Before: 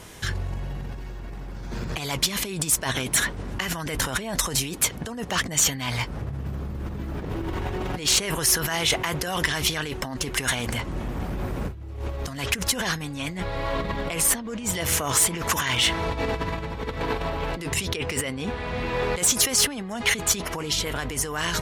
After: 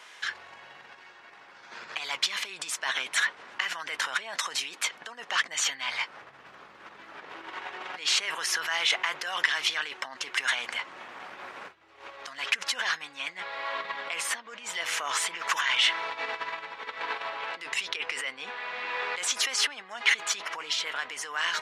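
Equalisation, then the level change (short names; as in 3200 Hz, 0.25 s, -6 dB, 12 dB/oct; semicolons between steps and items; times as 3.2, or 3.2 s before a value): HPF 1400 Hz 12 dB/oct; tape spacing loss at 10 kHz 22 dB; +6.0 dB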